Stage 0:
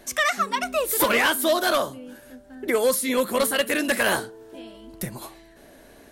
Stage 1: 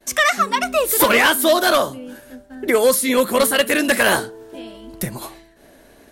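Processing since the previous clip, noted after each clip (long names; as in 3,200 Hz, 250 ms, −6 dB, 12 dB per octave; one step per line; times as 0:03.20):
downward expander −44 dBFS
level +6 dB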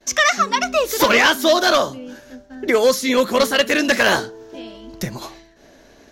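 high shelf with overshoot 7,500 Hz −7.5 dB, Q 3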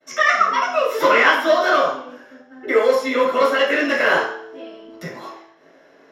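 convolution reverb RT60 0.60 s, pre-delay 3 ms, DRR −6.5 dB
level −16.5 dB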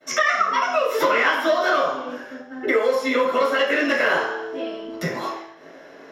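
downward compressor 3 to 1, threshold −27 dBFS, peak gain reduction 13 dB
level +7 dB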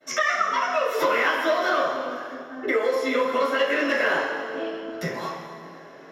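dense smooth reverb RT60 2.5 s, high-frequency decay 0.75×, pre-delay 115 ms, DRR 8 dB
level −3.5 dB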